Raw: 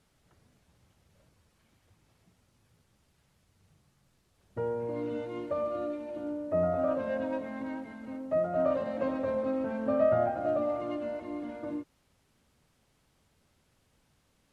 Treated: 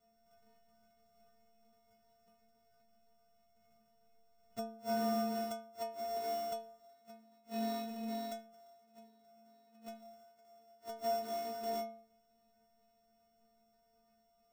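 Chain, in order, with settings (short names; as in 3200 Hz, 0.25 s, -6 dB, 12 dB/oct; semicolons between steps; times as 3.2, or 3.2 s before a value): sample sorter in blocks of 64 samples; flipped gate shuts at -25 dBFS, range -34 dB; metallic resonator 220 Hz, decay 0.55 s, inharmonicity 0.008; gain +11 dB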